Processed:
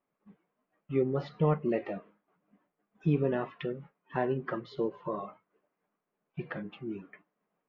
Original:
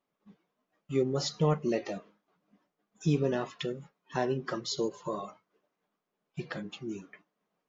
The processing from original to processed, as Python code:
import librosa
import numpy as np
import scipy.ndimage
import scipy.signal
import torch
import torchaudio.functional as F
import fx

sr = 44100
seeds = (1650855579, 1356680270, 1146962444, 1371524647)

y = scipy.signal.sosfilt(scipy.signal.butter(4, 2600.0, 'lowpass', fs=sr, output='sos'), x)